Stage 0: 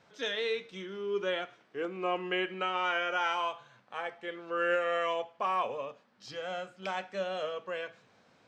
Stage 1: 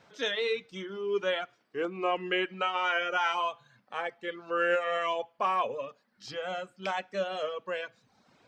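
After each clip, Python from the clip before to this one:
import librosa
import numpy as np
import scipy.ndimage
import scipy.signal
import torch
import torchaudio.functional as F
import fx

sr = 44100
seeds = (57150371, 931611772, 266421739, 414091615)

y = fx.dereverb_blind(x, sr, rt60_s=0.81)
y = y * 10.0 ** (3.5 / 20.0)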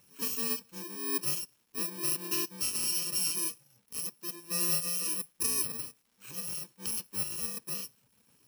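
y = fx.bit_reversed(x, sr, seeds[0], block=64)
y = fx.dmg_crackle(y, sr, seeds[1], per_s=440.0, level_db=-57.0)
y = y * 10.0 ** (-2.5 / 20.0)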